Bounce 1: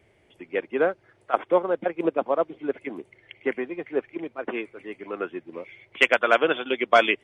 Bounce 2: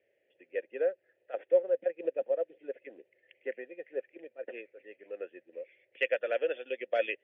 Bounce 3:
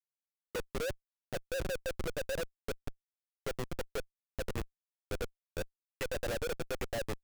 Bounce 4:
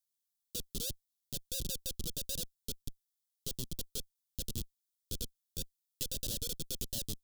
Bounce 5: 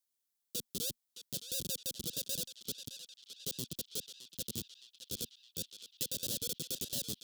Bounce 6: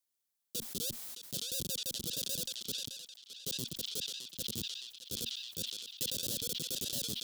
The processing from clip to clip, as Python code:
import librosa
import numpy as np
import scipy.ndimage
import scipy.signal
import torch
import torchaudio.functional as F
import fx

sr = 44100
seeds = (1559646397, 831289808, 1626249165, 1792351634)

y1 = fx.vowel_filter(x, sr, vowel='e')
y1 = F.gain(torch.from_numpy(y1), -2.0).numpy()
y2 = fx.env_lowpass_down(y1, sr, base_hz=570.0, full_db=-24.5)
y2 = fx.schmitt(y2, sr, flips_db=-36.5)
y2 = F.gain(torch.from_numpy(y2), 2.0).numpy()
y3 = fx.curve_eq(y2, sr, hz=(230.0, 760.0, 2200.0, 3300.0, 16000.0), db=(0, -21, -22, 7, 13))
y3 = F.gain(torch.from_numpy(y3), -1.5).numpy()
y4 = scipy.signal.sosfilt(scipy.signal.butter(2, 140.0, 'highpass', fs=sr, output='sos'), y3)
y4 = fx.echo_banded(y4, sr, ms=615, feedback_pct=70, hz=2800.0, wet_db=-7.0)
y4 = F.gain(torch.from_numpy(y4), 1.0).numpy()
y5 = fx.sustainer(y4, sr, db_per_s=39.0)